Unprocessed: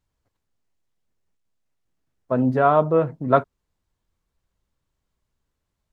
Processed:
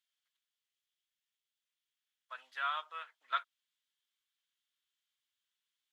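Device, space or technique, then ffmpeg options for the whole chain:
headphones lying on a table: -af "highpass=frequency=1500:width=0.5412,highpass=frequency=1500:width=1.3066,equalizer=frequency=3300:width_type=o:width=0.45:gain=11.5,volume=-5.5dB"

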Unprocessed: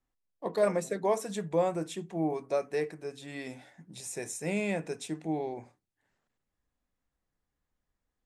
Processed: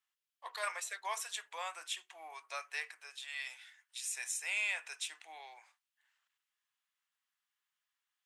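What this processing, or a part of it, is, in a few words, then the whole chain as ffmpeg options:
headphones lying on a table: -filter_complex "[0:a]highpass=frequency=1100:width=0.5412,highpass=frequency=1100:width=1.3066,equalizer=frequency=3000:width_type=o:width=0.57:gain=7,asplit=3[link_01][link_02][link_03];[link_01]afade=type=out:start_time=3.56:duration=0.02[link_04];[link_02]highpass=1400,afade=type=in:start_time=3.56:duration=0.02,afade=type=out:start_time=4.13:duration=0.02[link_05];[link_03]afade=type=in:start_time=4.13:duration=0.02[link_06];[link_04][link_05][link_06]amix=inputs=3:normalize=0,volume=1dB"

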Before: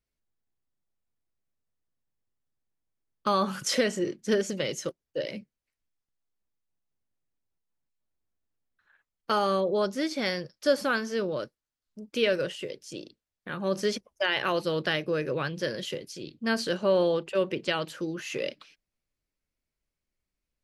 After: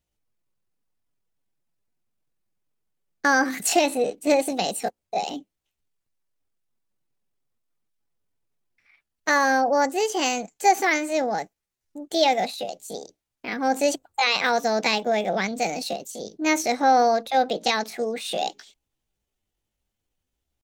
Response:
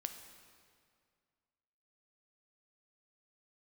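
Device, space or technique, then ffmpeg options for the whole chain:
chipmunk voice: -af "asetrate=60591,aresample=44100,atempo=0.727827,volume=5.5dB"

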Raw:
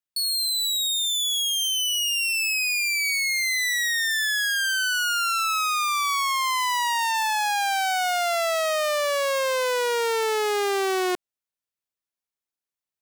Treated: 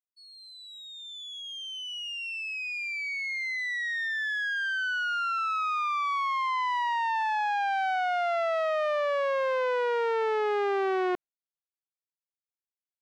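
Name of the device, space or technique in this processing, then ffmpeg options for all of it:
hearing-loss simulation: -af "lowpass=1900,agate=range=-33dB:threshold=-35dB:ratio=3:detection=peak,volume=-2.5dB"

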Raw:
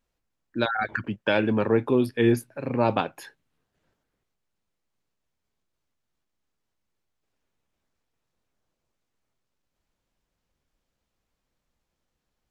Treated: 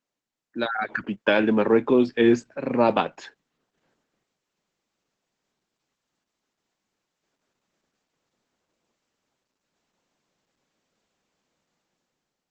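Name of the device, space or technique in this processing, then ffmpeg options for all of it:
video call: -af "highpass=frequency=160:width=0.5412,highpass=frequency=160:width=1.3066,dynaudnorm=framelen=250:gausssize=7:maxgain=11dB,volume=-3.5dB" -ar 48000 -c:a libopus -b:a 12k

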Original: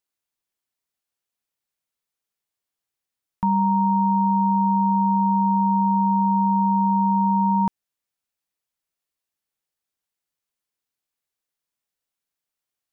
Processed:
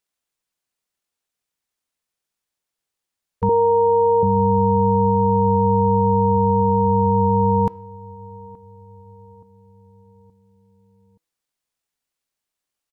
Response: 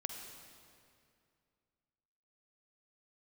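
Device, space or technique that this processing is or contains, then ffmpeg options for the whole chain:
octave pedal: -filter_complex "[0:a]bandreject=frequency=324.9:width_type=h:width=4,bandreject=frequency=649.8:width_type=h:width=4,bandreject=frequency=974.7:width_type=h:width=4,bandreject=frequency=1299.6:width_type=h:width=4,bandreject=frequency=1624.5:width_type=h:width=4,bandreject=frequency=1949.4:width_type=h:width=4,bandreject=frequency=2274.3:width_type=h:width=4,bandreject=frequency=2599.2:width_type=h:width=4,bandreject=frequency=2924.1:width_type=h:width=4,bandreject=frequency=3249:width_type=h:width=4,bandreject=frequency=3573.9:width_type=h:width=4,bandreject=frequency=3898.8:width_type=h:width=4,bandreject=frequency=4223.7:width_type=h:width=4,bandreject=frequency=4548.6:width_type=h:width=4,bandreject=frequency=4873.5:width_type=h:width=4,bandreject=frequency=5198.4:width_type=h:width=4,bandreject=frequency=5523.3:width_type=h:width=4,bandreject=frequency=5848.2:width_type=h:width=4,asplit=2[link_01][link_02];[link_02]asetrate=22050,aresample=44100,atempo=2,volume=-1dB[link_03];[link_01][link_03]amix=inputs=2:normalize=0,asettb=1/sr,asplit=3[link_04][link_05][link_06];[link_04]atrim=end=3.494[link_07];[link_05]atrim=start=3.49:end=4.23,asetpts=PTS-STARTPTS,afade=type=in:duration=0.004:curve=qsin,afade=type=out:start_time=0.736:duration=0.004:curve=qsin,lowshelf=frequency=270:width_type=q:width=3:gain=-12.5[link_08];[link_06]atrim=start=4.226[link_09];[link_07][link_08]acrossfade=duration=0.004:curve1=hsin:curve2=qsin[link_10];[link_10][link_09]acrossfade=duration=0.004:curve1=qsin:curve2=hsin,asplit=2[link_11][link_12];[link_12]adelay=874,lowpass=frequency=880:poles=1,volume=-21.5dB,asplit=2[link_13][link_14];[link_14]adelay=874,lowpass=frequency=880:poles=1,volume=0.55,asplit=2[link_15][link_16];[link_16]adelay=874,lowpass=frequency=880:poles=1,volume=0.55,asplit=2[link_17][link_18];[link_18]adelay=874,lowpass=frequency=880:poles=1,volume=0.55[link_19];[link_11][link_13][link_15][link_17][link_19]amix=inputs=5:normalize=0"

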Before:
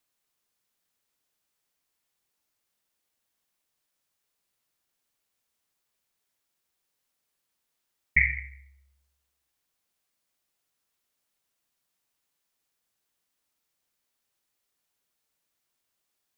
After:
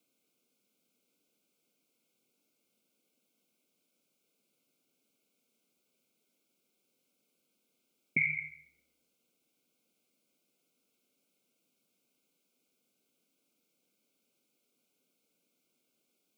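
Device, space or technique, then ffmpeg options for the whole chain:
PA system with an anti-feedback notch: -af "highpass=frequency=170:width=0.5412,highpass=frequency=170:width=1.3066,asuperstop=centerf=1800:order=12:qfactor=3.3,alimiter=limit=-23dB:level=0:latency=1:release=272,equalizer=frequency=125:width_type=o:width=1:gain=10,equalizer=frequency=250:width_type=o:width=1:gain=12,equalizer=frequency=500:width_type=o:width=1:gain=9,equalizer=frequency=1000:width_type=o:width=1:gain=-9,equalizer=frequency=2000:width_type=o:width=1:gain=6"

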